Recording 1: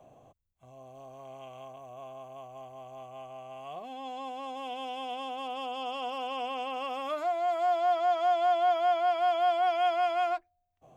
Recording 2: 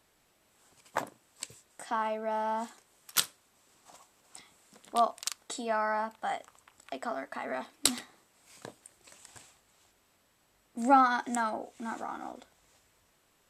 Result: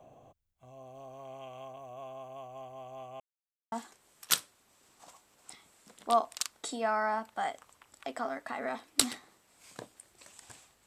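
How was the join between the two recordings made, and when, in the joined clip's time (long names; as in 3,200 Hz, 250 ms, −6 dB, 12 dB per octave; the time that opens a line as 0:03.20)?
recording 1
0:03.20–0:03.72: silence
0:03.72: continue with recording 2 from 0:02.58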